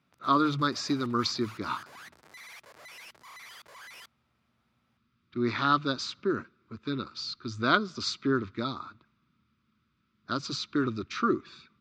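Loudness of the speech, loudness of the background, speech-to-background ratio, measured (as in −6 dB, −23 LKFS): −30.0 LKFS, −49.0 LKFS, 19.0 dB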